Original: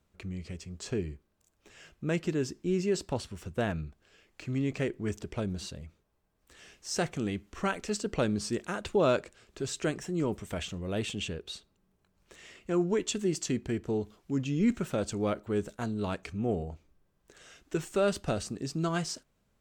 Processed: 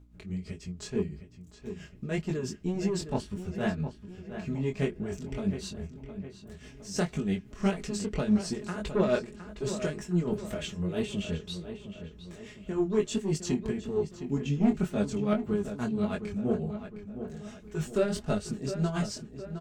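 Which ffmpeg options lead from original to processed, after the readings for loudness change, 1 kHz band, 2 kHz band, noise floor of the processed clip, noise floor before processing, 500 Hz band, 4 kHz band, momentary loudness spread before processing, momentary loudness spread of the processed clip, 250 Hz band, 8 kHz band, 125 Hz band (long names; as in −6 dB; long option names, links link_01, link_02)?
+0.5 dB, −2.0 dB, −2.0 dB, −51 dBFS, −74 dBFS, 0.0 dB, −2.0 dB, 13 LU, 14 LU, +2.5 dB, −2.5 dB, +2.0 dB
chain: -filter_complex "[0:a]lowshelf=frequency=210:gain=8,aecho=1:1:4.8:0.64,asplit=2[link_01][link_02];[link_02]aeval=exprs='0.335*sin(PI/2*2.51*val(0)/0.335)':channel_layout=same,volume=-10.5dB[link_03];[link_01][link_03]amix=inputs=2:normalize=0,aeval=exprs='val(0)+0.00631*(sin(2*PI*60*n/s)+sin(2*PI*2*60*n/s)/2+sin(2*PI*3*60*n/s)/3+sin(2*PI*4*60*n/s)/4+sin(2*PI*5*60*n/s)/5)':channel_layout=same,flanger=delay=19.5:depth=4.7:speed=1.8,tremolo=f=6:d=0.61,asplit=2[link_04][link_05];[link_05]adelay=712,lowpass=frequency=3200:poles=1,volume=-10dB,asplit=2[link_06][link_07];[link_07]adelay=712,lowpass=frequency=3200:poles=1,volume=0.49,asplit=2[link_08][link_09];[link_09]adelay=712,lowpass=frequency=3200:poles=1,volume=0.49,asplit=2[link_10][link_11];[link_11]adelay=712,lowpass=frequency=3200:poles=1,volume=0.49,asplit=2[link_12][link_13];[link_13]adelay=712,lowpass=frequency=3200:poles=1,volume=0.49[link_14];[link_04][link_06][link_08][link_10][link_12][link_14]amix=inputs=6:normalize=0,volume=-4dB"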